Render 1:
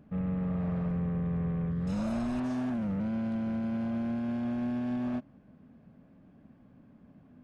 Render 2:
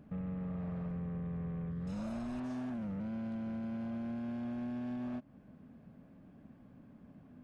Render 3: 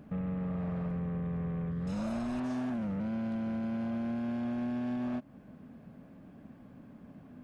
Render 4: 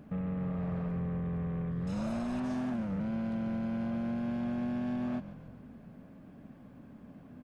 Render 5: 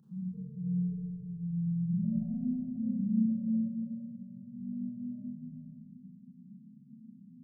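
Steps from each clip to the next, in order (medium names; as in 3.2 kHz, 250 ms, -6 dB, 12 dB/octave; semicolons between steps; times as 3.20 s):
compression 2.5:1, threshold -41 dBFS, peak gain reduction 8.5 dB
bass shelf 180 Hz -4 dB; trim +6.5 dB
frequency-shifting echo 141 ms, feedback 54%, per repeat -44 Hz, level -13 dB
loudest bins only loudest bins 4; static phaser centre 430 Hz, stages 8; Schroeder reverb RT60 2.2 s, combs from 28 ms, DRR -9 dB; trim -6 dB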